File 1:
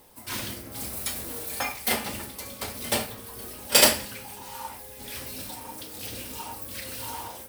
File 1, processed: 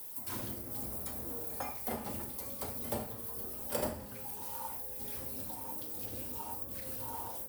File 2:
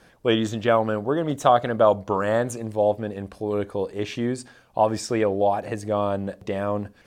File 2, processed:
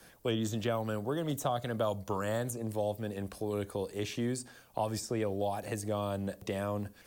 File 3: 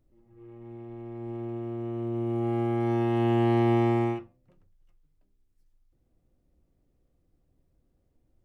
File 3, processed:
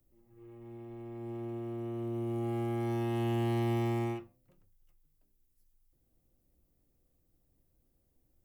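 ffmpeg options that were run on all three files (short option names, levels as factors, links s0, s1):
-filter_complex "[0:a]acrossover=split=170|3000[s0][s1][s2];[s1]acompressor=threshold=0.0316:ratio=2.5[s3];[s0][s3][s2]amix=inputs=3:normalize=0,aemphasis=mode=production:type=50fm,acrossover=split=280|1200[s4][s5][s6];[s6]acompressor=threshold=0.0178:ratio=10[s7];[s4][s5][s7]amix=inputs=3:normalize=0,volume=0.631"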